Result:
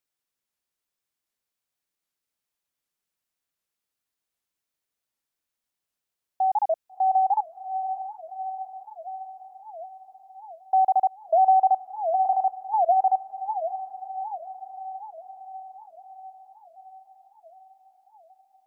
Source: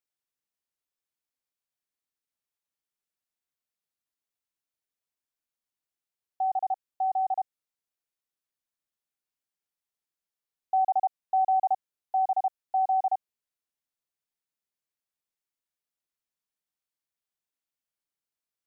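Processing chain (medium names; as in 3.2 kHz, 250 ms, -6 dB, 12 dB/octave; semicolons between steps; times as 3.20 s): echo that smears into a reverb 670 ms, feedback 65%, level -10 dB; warped record 78 rpm, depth 250 cents; trim +4.5 dB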